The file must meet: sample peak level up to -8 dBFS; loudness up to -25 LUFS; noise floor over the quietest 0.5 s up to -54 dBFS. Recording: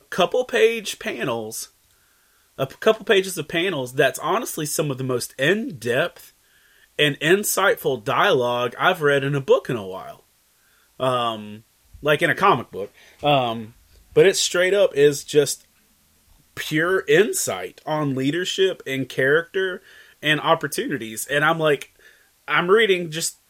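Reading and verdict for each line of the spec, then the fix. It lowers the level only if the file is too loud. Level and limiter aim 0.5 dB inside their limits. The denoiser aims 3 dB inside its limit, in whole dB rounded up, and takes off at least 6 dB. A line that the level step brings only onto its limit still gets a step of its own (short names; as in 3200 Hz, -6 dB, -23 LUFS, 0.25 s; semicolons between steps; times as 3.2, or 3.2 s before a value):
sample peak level -4.5 dBFS: fail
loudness -20.5 LUFS: fail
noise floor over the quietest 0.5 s -60 dBFS: OK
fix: gain -5 dB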